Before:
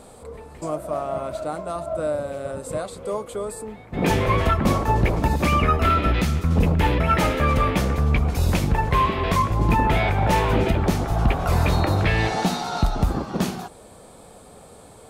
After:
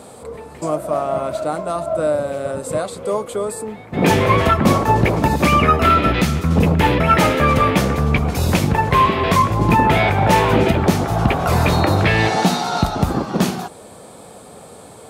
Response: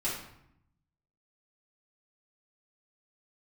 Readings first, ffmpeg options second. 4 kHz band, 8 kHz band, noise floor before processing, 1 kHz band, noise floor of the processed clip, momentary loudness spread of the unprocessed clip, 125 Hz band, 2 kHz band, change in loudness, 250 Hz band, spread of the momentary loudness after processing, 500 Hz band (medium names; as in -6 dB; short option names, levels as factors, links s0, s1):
+6.5 dB, +6.5 dB, -46 dBFS, +6.5 dB, -40 dBFS, 11 LU, +3.5 dB, +6.5 dB, +5.5 dB, +6.0 dB, 10 LU, +6.5 dB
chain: -af "highpass=99,volume=2.11"